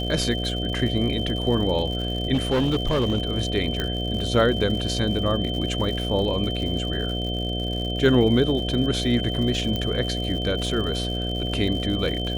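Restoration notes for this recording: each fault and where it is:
mains buzz 60 Hz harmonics 12 −28 dBFS
surface crackle 110 per second −31 dBFS
whistle 3,100 Hz −30 dBFS
0:02.33–0:03.27: clipping −17 dBFS
0:03.80: click −12 dBFS
0:09.76: click −14 dBFS

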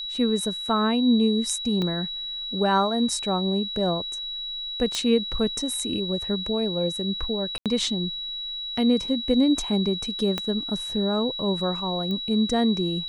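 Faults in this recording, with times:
whistle 3,900 Hz −30 dBFS
0:01.82: drop-out 2.2 ms
0:04.95: click −12 dBFS
0:07.58–0:07.66: drop-out 77 ms
0:10.38: click −12 dBFS
0:12.11: click −20 dBFS

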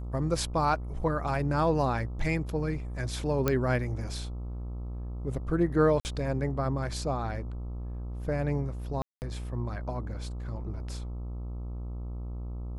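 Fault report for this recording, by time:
mains buzz 60 Hz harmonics 22 −36 dBFS
0:03.48: click −11 dBFS
0:06.00–0:06.05: drop-out 49 ms
0:09.02–0:09.22: drop-out 199 ms

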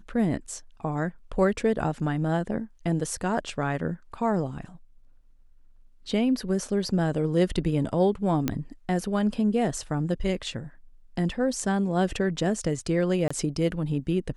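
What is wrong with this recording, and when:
0:08.48: click −11 dBFS
0:13.28–0:13.30: drop-out 25 ms

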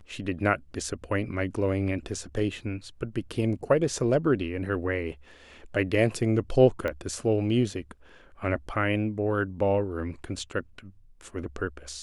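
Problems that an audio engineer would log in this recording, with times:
0:06.88: click −18 dBFS

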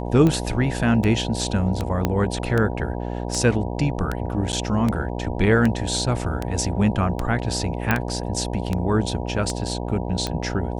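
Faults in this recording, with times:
mains buzz 60 Hz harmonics 16 −28 dBFS
scratch tick 78 rpm −11 dBFS
0:02.05: click −7 dBFS
0:04.52–0:04.53: drop-out 9.2 ms
0:07.91: click −6 dBFS

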